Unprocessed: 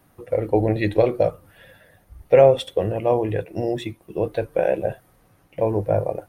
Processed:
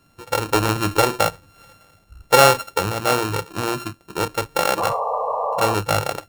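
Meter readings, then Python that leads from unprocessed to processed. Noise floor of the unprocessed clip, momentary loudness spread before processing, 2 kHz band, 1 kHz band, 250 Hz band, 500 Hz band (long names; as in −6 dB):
−59 dBFS, 12 LU, +11.0 dB, +9.5 dB, −1.0 dB, −3.0 dB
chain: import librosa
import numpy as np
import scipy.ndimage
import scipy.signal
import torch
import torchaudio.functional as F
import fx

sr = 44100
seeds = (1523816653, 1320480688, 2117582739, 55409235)

y = np.r_[np.sort(x[:len(x) // 32 * 32].reshape(-1, 32), axis=1).ravel(), x[len(x) // 32 * 32:]]
y = fx.spec_paint(y, sr, seeds[0], shape='noise', start_s=4.77, length_s=0.98, low_hz=430.0, high_hz=1200.0, level_db=-23.0)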